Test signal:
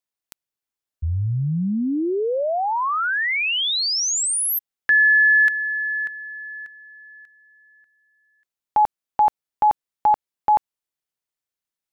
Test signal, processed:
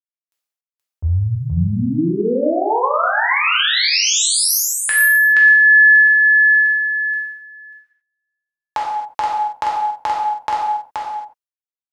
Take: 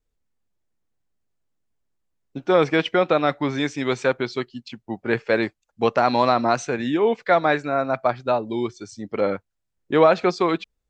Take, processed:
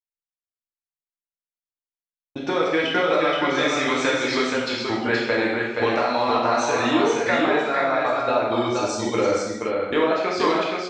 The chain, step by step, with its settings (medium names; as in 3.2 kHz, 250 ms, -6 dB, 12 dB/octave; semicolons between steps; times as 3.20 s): gate -44 dBFS, range -40 dB; bass shelf 300 Hz -11 dB; compression 10:1, threshold -29 dBFS; delay 475 ms -3.5 dB; gated-style reverb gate 300 ms falling, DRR -4.5 dB; trim +6.5 dB